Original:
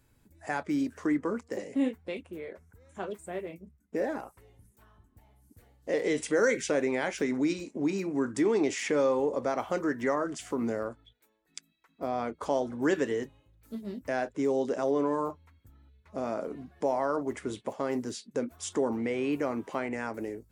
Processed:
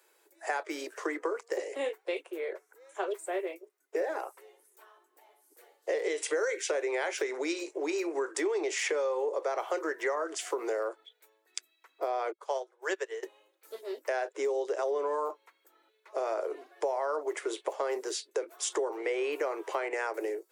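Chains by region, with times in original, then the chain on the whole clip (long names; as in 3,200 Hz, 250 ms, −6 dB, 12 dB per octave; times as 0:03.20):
0:12.32–0:13.23: linear-phase brick-wall high-pass 330 Hz + low-shelf EQ 500 Hz −8 dB + expander for the loud parts 2.5 to 1, over −42 dBFS
whole clip: Butterworth high-pass 350 Hz 72 dB per octave; downward compressor 6 to 1, threshold −34 dBFS; level +6 dB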